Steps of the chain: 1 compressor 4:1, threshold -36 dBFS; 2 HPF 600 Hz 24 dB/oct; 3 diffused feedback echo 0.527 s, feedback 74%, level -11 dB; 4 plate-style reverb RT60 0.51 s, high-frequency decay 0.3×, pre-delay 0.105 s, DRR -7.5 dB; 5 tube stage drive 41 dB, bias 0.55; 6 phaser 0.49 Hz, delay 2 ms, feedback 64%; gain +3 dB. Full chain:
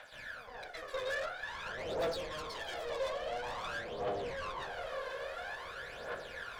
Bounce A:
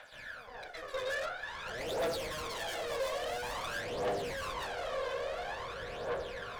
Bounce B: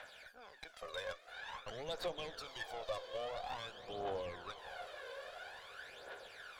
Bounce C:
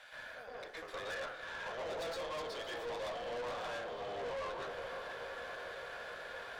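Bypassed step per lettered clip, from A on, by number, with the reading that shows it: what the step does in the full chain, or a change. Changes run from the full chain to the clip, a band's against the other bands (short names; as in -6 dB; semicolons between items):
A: 1, crest factor change -2.0 dB; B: 4, momentary loudness spread change +2 LU; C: 6, 125 Hz band -3.0 dB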